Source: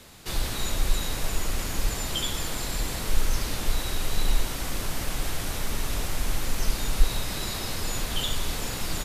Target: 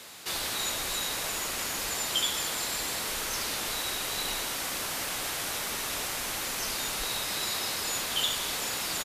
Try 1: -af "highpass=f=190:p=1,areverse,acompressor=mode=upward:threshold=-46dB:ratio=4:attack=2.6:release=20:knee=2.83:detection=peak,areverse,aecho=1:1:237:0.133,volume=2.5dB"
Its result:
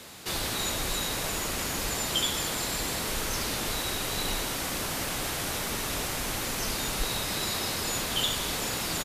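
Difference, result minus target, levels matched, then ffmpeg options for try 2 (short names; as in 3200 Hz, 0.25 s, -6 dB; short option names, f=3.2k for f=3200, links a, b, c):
250 Hz band +7.0 dB
-af "highpass=f=720:p=1,areverse,acompressor=mode=upward:threshold=-46dB:ratio=4:attack=2.6:release=20:knee=2.83:detection=peak,areverse,aecho=1:1:237:0.133,volume=2.5dB"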